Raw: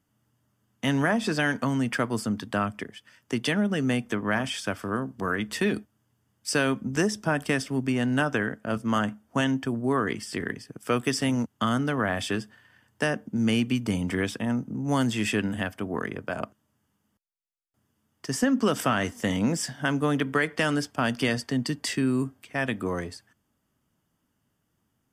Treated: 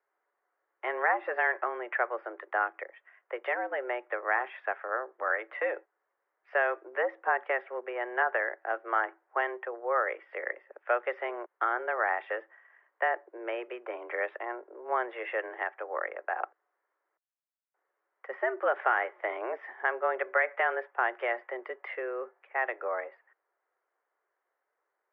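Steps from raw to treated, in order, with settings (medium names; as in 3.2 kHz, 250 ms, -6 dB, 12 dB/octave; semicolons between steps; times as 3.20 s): mistuned SSB +120 Hz 400–2000 Hz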